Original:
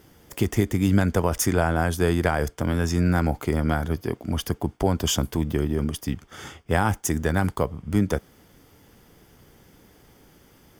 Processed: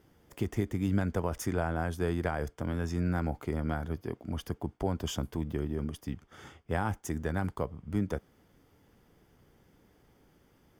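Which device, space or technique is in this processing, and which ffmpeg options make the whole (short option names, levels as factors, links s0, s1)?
behind a face mask: -af "highshelf=f=3100:g=-7.5,volume=0.355"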